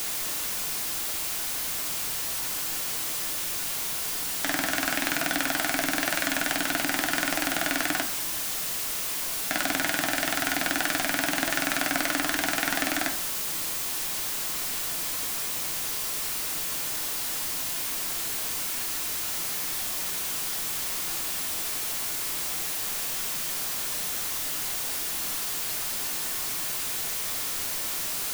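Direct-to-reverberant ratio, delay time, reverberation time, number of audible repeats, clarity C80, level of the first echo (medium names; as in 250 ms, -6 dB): 5.0 dB, no echo, 0.60 s, no echo, 14.5 dB, no echo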